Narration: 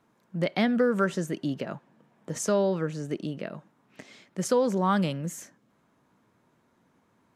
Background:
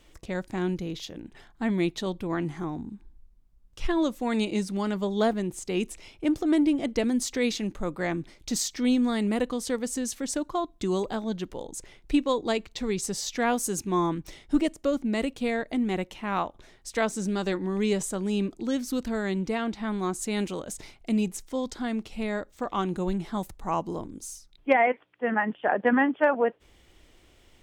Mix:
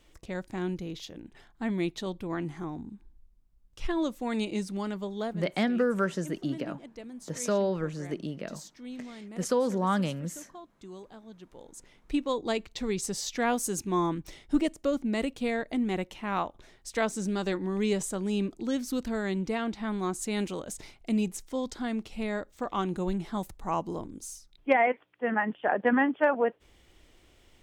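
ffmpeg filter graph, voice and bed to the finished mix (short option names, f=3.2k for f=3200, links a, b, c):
-filter_complex "[0:a]adelay=5000,volume=-2.5dB[a];[1:a]volume=12dB,afade=t=out:st=4.75:d=0.83:silence=0.199526,afade=t=in:st=11.37:d=1.28:silence=0.158489[b];[a][b]amix=inputs=2:normalize=0"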